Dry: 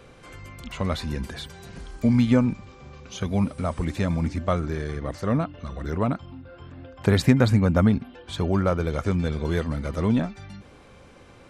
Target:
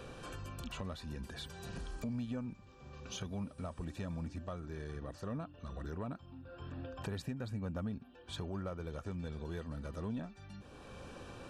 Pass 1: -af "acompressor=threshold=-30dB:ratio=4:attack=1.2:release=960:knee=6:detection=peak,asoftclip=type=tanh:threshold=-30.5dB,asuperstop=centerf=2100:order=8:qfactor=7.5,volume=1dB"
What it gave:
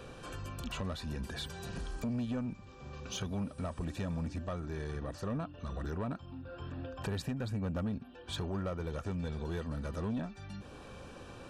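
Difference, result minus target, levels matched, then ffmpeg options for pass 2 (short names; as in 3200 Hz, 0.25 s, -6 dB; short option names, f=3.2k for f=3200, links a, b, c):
compressor: peak gain reduction -6 dB
-af "acompressor=threshold=-38dB:ratio=4:attack=1.2:release=960:knee=6:detection=peak,asoftclip=type=tanh:threshold=-30.5dB,asuperstop=centerf=2100:order=8:qfactor=7.5,volume=1dB"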